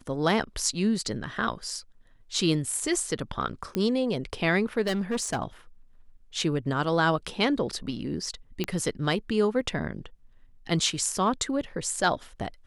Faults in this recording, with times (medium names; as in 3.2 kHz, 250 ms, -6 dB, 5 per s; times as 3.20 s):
3.75 s: pop -14 dBFS
4.86–5.38 s: clipped -23.5 dBFS
8.64 s: pop -14 dBFS